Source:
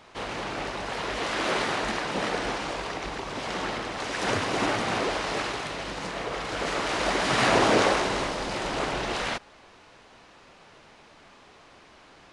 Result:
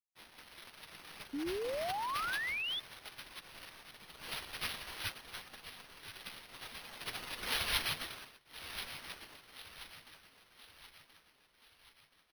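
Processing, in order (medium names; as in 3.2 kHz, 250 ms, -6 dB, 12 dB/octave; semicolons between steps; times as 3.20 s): spectral gate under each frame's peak -25 dB weak; 1.64–2.38 s: treble shelf 4.1 kHz +6 dB; crossover distortion -57.5 dBFS; distance through air 210 m; feedback delay 1028 ms, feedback 50%, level -12 dB; careless resampling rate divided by 6×, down none, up hold; 1.33–2.80 s: painted sound rise 270–3600 Hz -53 dBFS; 8.15–8.70 s: dip -21 dB, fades 0.25 s; trim +15.5 dB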